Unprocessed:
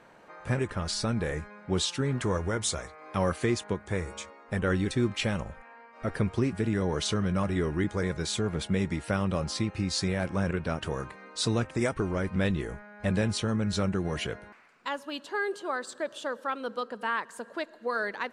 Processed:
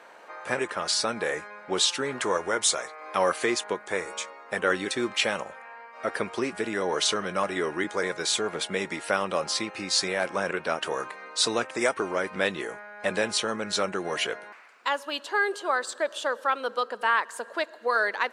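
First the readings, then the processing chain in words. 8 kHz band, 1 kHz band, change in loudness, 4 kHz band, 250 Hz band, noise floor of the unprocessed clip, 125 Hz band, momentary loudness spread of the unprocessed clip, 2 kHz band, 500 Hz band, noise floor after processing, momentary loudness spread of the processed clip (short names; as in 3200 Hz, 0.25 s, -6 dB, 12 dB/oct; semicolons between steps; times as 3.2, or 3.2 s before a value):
+7.0 dB, +6.5 dB, +3.0 dB, +7.0 dB, -5.0 dB, -53 dBFS, -15.0 dB, 8 LU, +7.0 dB, +3.5 dB, -48 dBFS, 9 LU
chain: HPF 490 Hz 12 dB/oct; gain +7 dB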